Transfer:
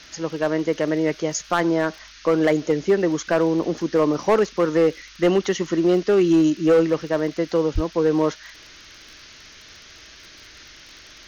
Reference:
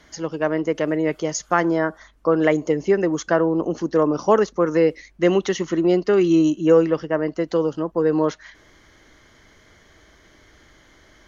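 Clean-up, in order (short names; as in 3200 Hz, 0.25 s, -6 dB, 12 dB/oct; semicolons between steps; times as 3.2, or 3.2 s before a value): clip repair -11 dBFS; de-click; 7.74–7.86 HPF 140 Hz 24 dB/oct; noise print and reduce 8 dB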